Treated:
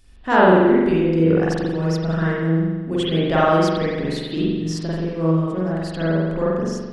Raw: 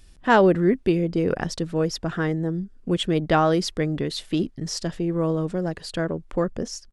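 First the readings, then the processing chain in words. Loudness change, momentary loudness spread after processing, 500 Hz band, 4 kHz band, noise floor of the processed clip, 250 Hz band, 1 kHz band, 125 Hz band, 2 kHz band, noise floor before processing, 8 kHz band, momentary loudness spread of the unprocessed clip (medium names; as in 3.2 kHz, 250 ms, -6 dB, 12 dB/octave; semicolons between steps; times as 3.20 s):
+4.5 dB, 10 LU, +4.0 dB, +0.5 dB, -32 dBFS, +4.5 dB, +4.0 dB, +5.5 dB, +4.5 dB, -50 dBFS, -4.0 dB, 10 LU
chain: spring tank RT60 1.3 s, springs 43 ms, chirp 45 ms, DRR -7.5 dB; trim -4 dB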